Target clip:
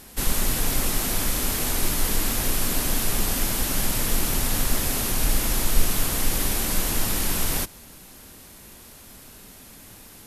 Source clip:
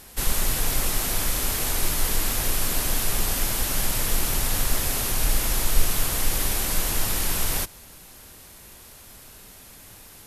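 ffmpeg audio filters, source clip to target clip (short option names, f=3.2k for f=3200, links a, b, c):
-af "equalizer=f=240:w=1.3:g=6"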